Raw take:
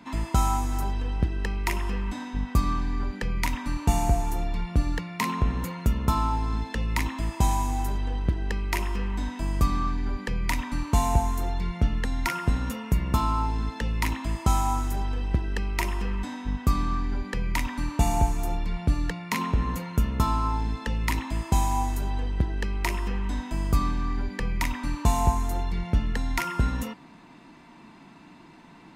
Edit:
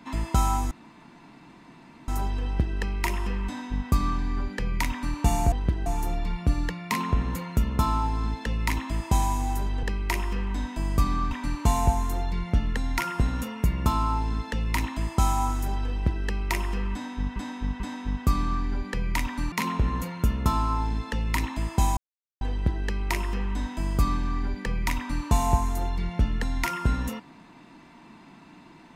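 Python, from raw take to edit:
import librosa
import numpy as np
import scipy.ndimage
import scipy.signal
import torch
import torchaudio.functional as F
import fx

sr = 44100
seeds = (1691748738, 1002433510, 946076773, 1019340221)

y = fx.edit(x, sr, fx.insert_room_tone(at_s=0.71, length_s=1.37),
    fx.move(start_s=8.12, length_s=0.34, to_s=4.15),
    fx.cut(start_s=9.94, length_s=0.65),
    fx.repeat(start_s=16.2, length_s=0.44, count=3),
    fx.cut(start_s=17.92, length_s=1.34),
    fx.silence(start_s=21.71, length_s=0.44), tone=tone)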